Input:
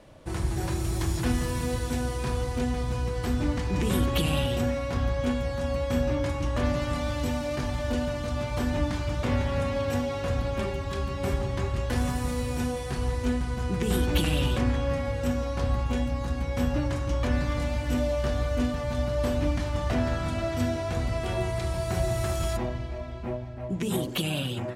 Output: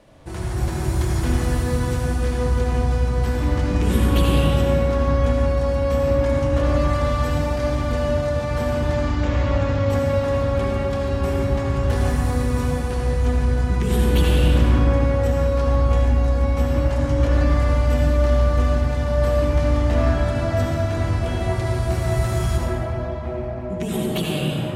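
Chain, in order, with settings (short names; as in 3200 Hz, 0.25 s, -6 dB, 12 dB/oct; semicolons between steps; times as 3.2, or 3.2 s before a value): 8.93–9.9 elliptic low-pass 7400 Hz, stop band 40 dB; reverb RT60 3.5 s, pre-delay 63 ms, DRR -4 dB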